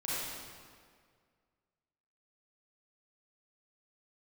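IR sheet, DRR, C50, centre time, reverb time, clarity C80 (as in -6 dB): -9.5 dB, -6.0 dB, 144 ms, 1.9 s, -2.5 dB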